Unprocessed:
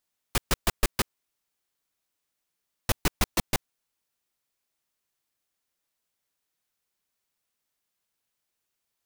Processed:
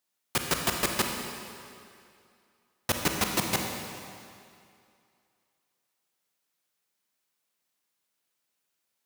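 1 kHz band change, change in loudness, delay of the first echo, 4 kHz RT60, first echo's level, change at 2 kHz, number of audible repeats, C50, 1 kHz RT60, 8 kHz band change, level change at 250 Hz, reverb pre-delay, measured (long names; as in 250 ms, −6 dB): +2.0 dB, +0.5 dB, no echo audible, 2.2 s, no echo audible, +2.0 dB, no echo audible, 3.5 dB, 2.4 s, +2.0 dB, +1.5 dB, 29 ms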